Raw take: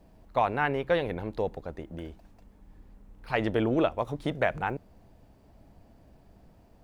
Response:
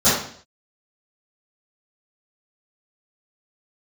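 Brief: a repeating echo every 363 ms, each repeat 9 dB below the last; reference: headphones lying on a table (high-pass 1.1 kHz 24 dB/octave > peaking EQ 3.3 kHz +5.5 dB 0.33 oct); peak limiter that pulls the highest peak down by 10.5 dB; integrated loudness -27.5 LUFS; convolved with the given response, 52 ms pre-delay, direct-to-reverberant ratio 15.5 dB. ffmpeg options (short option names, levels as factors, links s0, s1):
-filter_complex "[0:a]alimiter=limit=0.0841:level=0:latency=1,aecho=1:1:363|726|1089|1452:0.355|0.124|0.0435|0.0152,asplit=2[s0][s1];[1:a]atrim=start_sample=2205,adelay=52[s2];[s1][s2]afir=irnorm=-1:irlink=0,volume=0.015[s3];[s0][s3]amix=inputs=2:normalize=0,highpass=f=1100:w=0.5412,highpass=f=1100:w=1.3066,equalizer=f=3300:t=o:w=0.33:g=5.5,volume=5.62"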